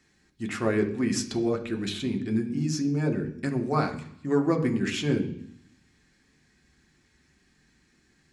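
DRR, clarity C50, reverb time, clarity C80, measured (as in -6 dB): 2.5 dB, 12.0 dB, 0.65 s, 14.5 dB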